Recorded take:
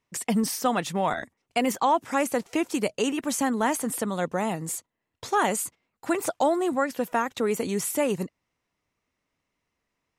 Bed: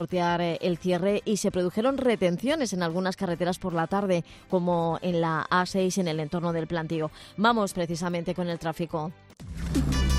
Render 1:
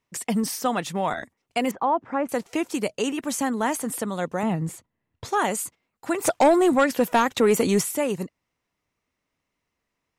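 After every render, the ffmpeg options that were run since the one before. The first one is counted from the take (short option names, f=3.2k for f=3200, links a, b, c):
-filter_complex "[0:a]asettb=1/sr,asplit=3[a][b][c];[a]atrim=end=1.714[d];[b]atrim=start=1.71:end=2.29,asetpts=PTS-STARTPTS,afade=t=in:d=0.004:c=qsin,afade=t=out:st=0.576:d=0.004:c=qsin,lowpass=1.4k[e];[c]atrim=start=2.286[f];[d][e]acrossfade=d=0.004:c1=hsin:c2=qsin[g];[g][f]acrossfade=d=0.004:c1=qsin:c2=hsin,asettb=1/sr,asplit=3[h][i][j];[h]atrim=end=4.434[k];[i]atrim=start=4.43:end=5.25,asetpts=PTS-STARTPTS,afade=t=in:d=0.004:c=qsin,afade=t=out:st=0.816:d=0.004:c=qsin,bass=f=250:g=10,treble=f=4k:g=-10[l];[j]atrim=start=5.246[m];[k][l]acrossfade=d=0.004:c1=hsin:c2=qsin[n];[n][m]acrossfade=d=0.004:c1=qsin:c2=hsin,asplit=3[o][p][q];[o]afade=t=out:st=6.24:d=0.02[r];[p]aeval=exprs='0.266*sin(PI/2*1.58*val(0)/0.266)':c=same,afade=t=in:st=6.24:d=0.02,afade=t=out:st=7.81:d=0.02[s];[q]afade=t=in:st=7.81:d=0.02[t];[r][s][t]amix=inputs=3:normalize=0"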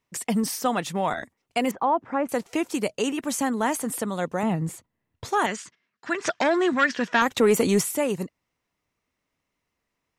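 -filter_complex "[0:a]asettb=1/sr,asplit=3[a][b][c];[a]atrim=end=5.464[d];[b]atrim=start=5.46:end=7.22,asetpts=PTS-STARTPTS,afade=t=in:d=0.004:c=qsin,afade=t=out:st=1.756:d=0.004:c=qsin,highpass=170,equalizer=f=300:t=q:w=4:g=-6,equalizer=f=520:t=q:w=4:g=-9,equalizer=f=810:t=q:w=4:g=-9,equalizer=f=1.7k:t=q:w=4:g=9,equalizer=f=3.2k:t=q:w=4:g=3,equalizer=f=5.7k:t=q:w=4:g=4,lowpass=f=6k:w=0.5412,lowpass=f=6k:w=1.3066[e];[c]atrim=start=7.216[f];[d][e]acrossfade=d=0.004:c1=hsin:c2=qsin[g];[g][f]acrossfade=d=0.004:c1=qsin:c2=hsin"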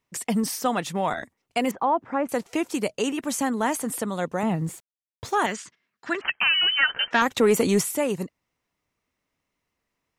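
-filter_complex "[0:a]asettb=1/sr,asplit=3[a][b][c];[a]atrim=end=4.434[d];[b]atrim=start=4.43:end=5.54,asetpts=PTS-STARTPTS,afade=t=in:d=0.004:c=qsin,afade=t=out:st=1.106:d=0.004:c=qsin,aeval=exprs='val(0)*gte(abs(val(0)),0.00376)':c=same[e];[c]atrim=start=5.536[f];[d][e]acrossfade=d=0.004:c1=hsin:c2=qsin[g];[g][f]acrossfade=d=0.004:c1=qsin:c2=hsin,asettb=1/sr,asplit=3[h][i][j];[h]atrim=end=6.214[k];[i]atrim=start=6.21:end=7.11,asetpts=PTS-STARTPTS,afade=t=in:d=0.004:c=qsin,afade=t=out:st=0.896:d=0.004:c=qsin,lowpass=f=2.8k:t=q:w=0.5098,lowpass=f=2.8k:t=q:w=0.6013,lowpass=f=2.8k:t=q:w=0.9,lowpass=f=2.8k:t=q:w=2.563,afreqshift=-3300[l];[j]atrim=start=7.106[m];[k][l]acrossfade=d=0.004:c1=hsin:c2=qsin[n];[n][m]acrossfade=d=0.004:c1=qsin:c2=hsin"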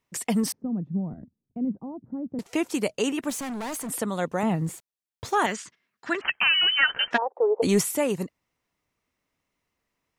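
-filter_complex "[0:a]asettb=1/sr,asplit=3[a][b][c];[a]atrim=end=0.524[d];[b]atrim=start=0.52:end=2.39,asetpts=PTS-STARTPTS,afade=t=in:d=0.004:c=qsin,afade=t=out:st=1.866:d=0.004:c=qsin,lowpass=f=200:t=q:w=1.6[e];[c]atrim=start=2.386[f];[d][e]acrossfade=d=0.004:c1=hsin:c2=qsin[g];[g][f]acrossfade=d=0.004:c1=qsin:c2=hsin,asettb=1/sr,asplit=3[h][i][j];[h]atrim=end=3.304[k];[i]atrim=start=3.3:end=3.89,asetpts=PTS-STARTPTS,afade=t=in:d=0.004:c=qsin,afade=t=out:st=0.586:d=0.004:c=qsin,volume=30.5dB,asoftclip=hard,volume=-30.5dB[l];[j]atrim=start=3.886[m];[k][l]acrossfade=d=0.004:c1=hsin:c2=qsin[n];[n][m]acrossfade=d=0.004:c1=qsin:c2=hsin,asplit=3[o][p][q];[o]afade=t=out:st=7.16:d=0.02[r];[p]asuperpass=centerf=630:order=8:qfactor=1.2,afade=t=in:st=7.16:d=0.02,afade=t=out:st=7.62:d=0.02[s];[q]afade=t=in:st=7.62:d=0.02[t];[r][s][t]amix=inputs=3:normalize=0"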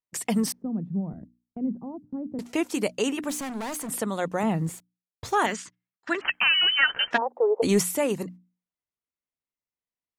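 -af "agate=range=-21dB:threshold=-43dB:ratio=16:detection=peak,bandreject=f=60:t=h:w=6,bandreject=f=120:t=h:w=6,bandreject=f=180:t=h:w=6,bandreject=f=240:t=h:w=6,bandreject=f=300:t=h:w=6"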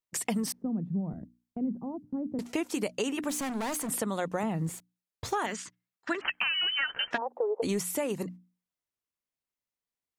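-af "acompressor=threshold=-27dB:ratio=6"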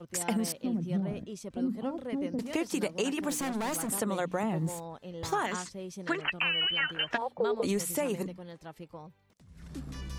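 -filter_complex "[1:a]volume=-16dB[a];[0:a][a]amix=inputs=2:normalize=0"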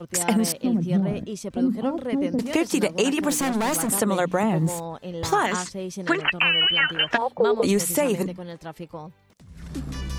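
-af "volume=9dB"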